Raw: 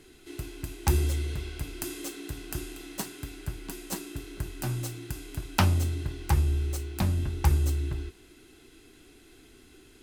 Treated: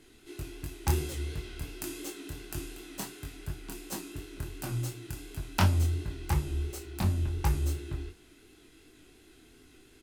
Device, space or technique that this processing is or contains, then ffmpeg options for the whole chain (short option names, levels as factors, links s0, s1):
double-tracked vocal: -filter_complex "[0:a]asplit=2[s0][s1];[s1]adelay=34,volume=0.237[s2];[s0][s2]amix=inputs=2:normalize=0,flanger=delay=19:depth=6.6:speed=2.8"